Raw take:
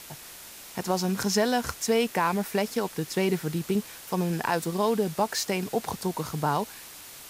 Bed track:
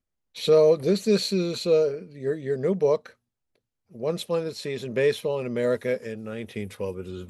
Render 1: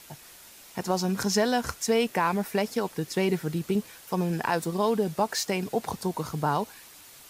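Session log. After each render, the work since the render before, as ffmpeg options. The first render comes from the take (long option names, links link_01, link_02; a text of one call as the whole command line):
ffmpeg -i in.wav -af "afftdn=noise_reduction=6:noise_floor=-45" out.wav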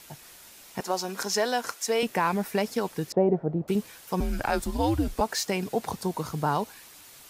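ffmpeg -i in.wav -filter_complex "[0:a]asettb=1/sr,asplit=3[link_01][link_02][link_03];[link_01]atrim=end=0.804[link_04];[link_02]atrim=start=0.8:end=2.03,asetpts=PTS-STARTPTS,afade=type=in:duration=0.004:curve=qsin,afade=type=out:start_time=1.226:duration=0.004:curve=qsin,highpass=380[link_05];[link_03]atrim=start=2.026[link_06];[link_04][link_05]acrossfade=duration=0.004:curve1=hsin:curve2=qsin[link_07];[link_07][link_06]acrossfade=duration=0.004:curve1=qsin:curve2=hsin,asettb=1/sr,asplit=3[link_08][link_09][link_10];[link_08]atrim=end=3.124[link_11];[link_09]atrim=start=3.12:end=3.68,asetpts=PTS-STARTPTS,afade=type=in:duration=0.004:curve=qsin,afade=type=out:start_time=0.556:duration=0.004:curve=qsin,lowpass=frequency=670:width_type=q:width=3.8[link_12];[link_10]atrim=start=3.676[link_13];[link_11][link_12]acrossfade=duration=0.004:curve1=hsin:curve2=qsin[link_14];[link_14][link_13]acrossfade=duration=0.004:curve1=qsin:curve2=hsin,asettb=1/sr,asplit=3[link_15][link_16][link_17];[link_15]atrim=end=4.204[link_18];[link_16]atrim=start=4.2:end=5.21,asetpts=PTS-STARTPTS,afade=type=in:duration=0.004:curve=qsin,afade=type=out:start_time=1.006:duration=0.004:curve=qsin,afreqshift=-130[link_19];[link_17]atrim=start=5.206[link_20];[link_18][link_19]acrossfade=duration=0.004:curve1=hsin:curve2=qsin[link_21];[link_21][link_20]acrossfade=duration=0.004:curve1=qsin:curve2=hsin" out.wav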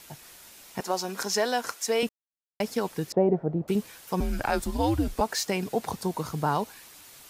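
ffmpeg -i in.wav -filter_complex "[0:a]asplit=3[link_01][link_02][link_03];[link_01]atrim=end=2.09,asetpts=PTS-STARTPTS,afade=type=out:start_time=2.086:duration=0.004:curve=hsin[link_04];[link_02]atrim=start=2.09:end=2.6,asetpts=PTS-STARTPTS,volume=0[link_05];[link_03]atrim=start=2.6,asetpts=PTS-STARTPTS,afade=type=in:duration=0.004:curve=hsin[link_06];[link_04][link_05][link_06]concat=n=3:v=0:a=1" out.wav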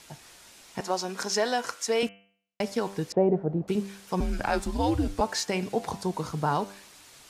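ffmpeg -i in.wav -af "lowpass=9000,bandreject=frequency=98.53:width_type=h:width=4,bandreject=frequency=197.06:width_type=h:width=4,bandreject=frequency=295.59:width_type=h:width=4,bandreject=frequency=394.12:width_type=h:width=4,bandreject=frequency=492.65:width_type=h:width=4,bandreject=frequency=591.18:width_type=h:width=4,bandreject=frequency=689.71:width_type=h:width=4,bandreject=frequency=788.24:width_type=h:width=4,bandreject=frequency=886.77:width_type=h:width=4,bandreject=frequency=985.3:width_type=h:width=4,bandreject=frequency=1083.83:width_type=h:width=4,bandreject=frequency=1182.36:width_type=h:width=4,bandreject=frequency=1280.89:width_type=h:width=4,bandreject=frequency=1379.42:width_type=h:width=4,bandreject=frequency=1477.95:width_type=h:width=4,bandreject=frequency=1576.48:width_type=h:width=4,bandreject=frequency=1675.01:width_type=h:width=4,bandreject=frequency=1773.54:width_type=h:width=4,bandreject=frequency=1872.07:width_type=h:width=4,bandreject=frequency=1970.6:width_type=h:width=4,bandreject=frequency=2069.13:width_type=h:width=4,bandreject=frequency=2167.66:width_type=h:width=4,bandreject=frequency=2266.19:width_type=h:width=4,bandreject=frequency=2364.72:width_type=h:width=4,bandreject=frequency=2463.25:width_type=h:width=4,bandreject=frequency=2561.78:width_type=h:width=4,bandreject=frequency=2660.31:width_type=h:width=4,bandreject=frequency=2758.84:width_type=h:width=4,bandreject=frequency=2857.37:width_type=h:width=4,bandreject=frequency=2955.9:width_type=h:width=4,bandreject=frequency=3054.43:width_type=h:width=4,bandreject=frequency=3152.96:width_type=h:width=4" out.wav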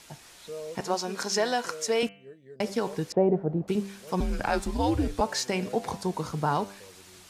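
ffmpeg -i in.wav -i bed.wav -filter_complex "[1:a]volume=-21dB[link_01];[0:a][link_01]amix=inputs=2:normalize=0" out.wav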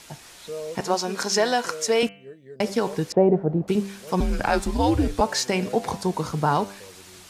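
ffmpeg -i in.wav -af "volume=5dB" out.wav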